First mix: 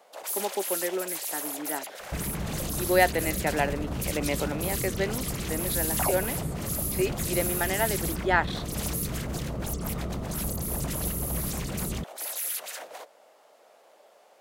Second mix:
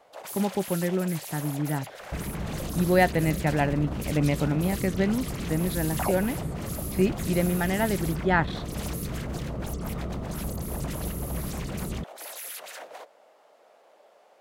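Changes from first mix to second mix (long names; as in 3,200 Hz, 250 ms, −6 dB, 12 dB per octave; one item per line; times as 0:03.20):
speech: remove high-pass filter 340 Hz 24 dB per octave
master: add high-shelf EQ 4,800 Hz −8.5 dB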